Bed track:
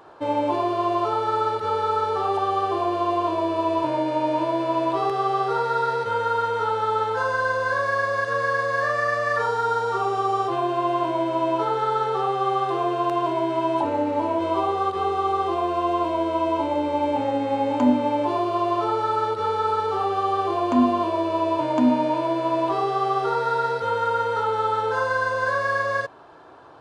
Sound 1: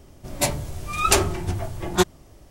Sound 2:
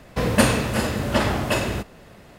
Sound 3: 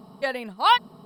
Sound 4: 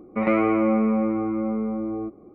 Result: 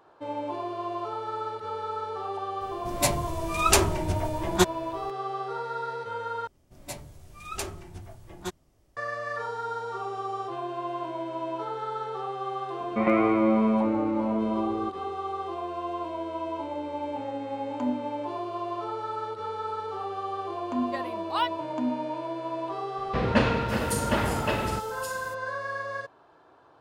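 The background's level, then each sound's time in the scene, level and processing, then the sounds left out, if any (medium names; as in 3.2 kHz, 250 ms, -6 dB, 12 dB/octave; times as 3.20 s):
bed track -10 dB
2.61 s: add 1 -2 dB
6.47 s: replace with 1 -16 dB
12.80 s: add 4 -2 dB
20.70 s: add 3 -10.5 dB
22.97 s: add 2 -5 dB + bands offset in time lows, highs 550 ms, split 4.6 kHz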